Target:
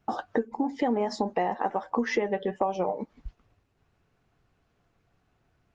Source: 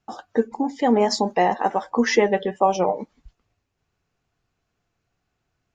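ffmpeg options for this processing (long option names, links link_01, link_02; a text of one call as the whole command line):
ffmpeg -i in.wav -af "lowpass=frequency=3000:poles=1,acompressor=threshold=-33dB:ratio=5,volume=7.5dB" -ar 48000 -c:a libopus -b:a 32k out.opus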